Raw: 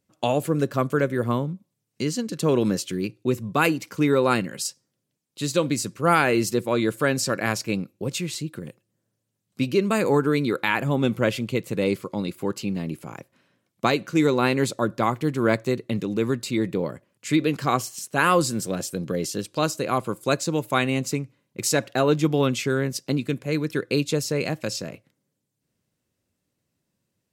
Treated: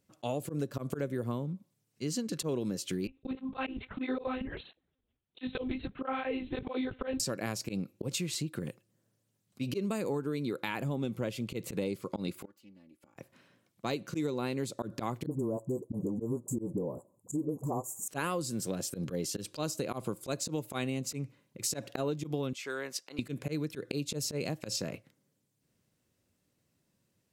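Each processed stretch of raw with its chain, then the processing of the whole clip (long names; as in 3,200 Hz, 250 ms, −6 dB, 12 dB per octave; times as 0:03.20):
0:03.07–0:07.20: one-pitch LPC vocoder at 8 kHz 260 Hz + through-zero flanger with one copy inverted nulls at 1.5 Hz, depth 7.5 ms
0:12.45–0:13.16: phase distortion by the signal itself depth 0.15 ms + comb filter 3.5 ms, depth 80% + gate with flip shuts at −28 dBFS, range −31 dB
0:15.26–0:18.08: Chebyshev band-stop filter 1,000–7,100 Hz, order 4 + all-pass dispersion highs, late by 49 ms, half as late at 380 Hz
0:22.53–0:23.19: high-pass filter 1,000 Hz + spectral tilt −2.5 dB per octave
whole clip: dynamic equaliser 1,600 Hz, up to −7 dB, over −37 dBFS, Q 0.74; volume swells 115 ms; downward compressor 6 to 1, threshold −32 dBFS; level +1 dB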